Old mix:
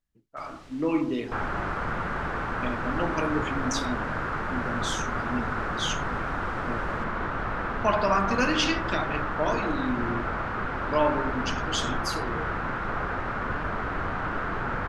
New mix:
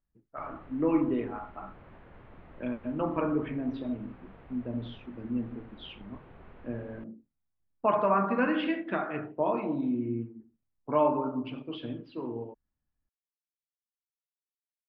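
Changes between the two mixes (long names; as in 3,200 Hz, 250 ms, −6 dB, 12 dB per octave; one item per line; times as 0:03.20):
second sound: muted
master: add Gaussian smoothing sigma 4 samples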